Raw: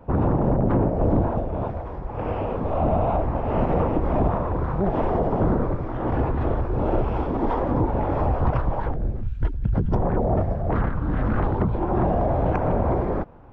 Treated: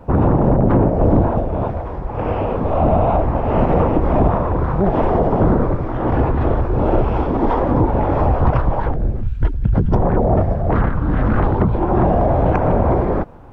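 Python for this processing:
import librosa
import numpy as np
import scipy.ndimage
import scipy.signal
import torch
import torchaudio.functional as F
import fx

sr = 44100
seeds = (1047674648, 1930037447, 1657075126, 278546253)

y = fx.dmg_noise_colour(x, sr, seeds[0], colour='brown', level_db=-59.0)
y = F.gain(torch.from_numpy(y), 6.5).numpy()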